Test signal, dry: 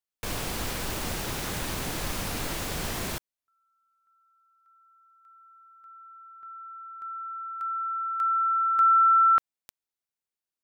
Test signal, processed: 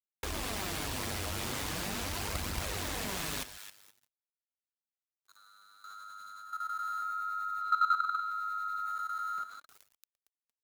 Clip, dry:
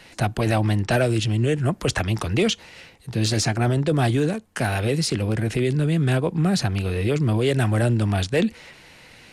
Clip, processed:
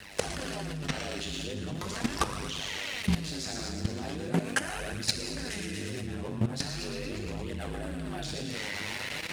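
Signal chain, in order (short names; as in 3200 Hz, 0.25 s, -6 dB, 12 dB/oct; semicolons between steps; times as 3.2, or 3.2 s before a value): negative-ratio compressor -30 dBFS, ratio -1; bell 81 Hz -14 dB 0.76 oct; thin delay 0.115 s, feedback 65%, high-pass 1700 Hz, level -6 dB; non-linear reverb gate 0.42 s falling, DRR -0.5 dB; ring modulator 50 Hz; sample leveller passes 2; low shelf 130 Hz +4 dB; sample gate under -43 dBFS; HPF 40 Hz 12 dB/oct; flange 0.4 Hz, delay 0.5 ms, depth 9.5 ms, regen +39%; level quantiser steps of 12 dB; Doppler distortion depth 0.32 ms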